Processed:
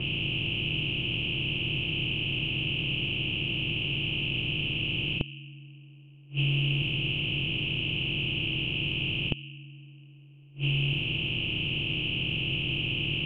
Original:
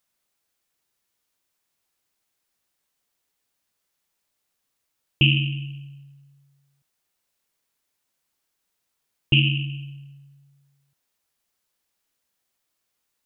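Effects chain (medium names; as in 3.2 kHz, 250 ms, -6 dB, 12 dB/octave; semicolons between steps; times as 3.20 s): spectral levelling over time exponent 0.2; multi-head delay 78 ms, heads first and third, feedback 60%, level -16 dB; inverted gate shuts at -15 dBFS, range -27 dB; level-controlled noise filter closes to 1.2 kHz, open at -22.5 dBFS; trim -1.5 dB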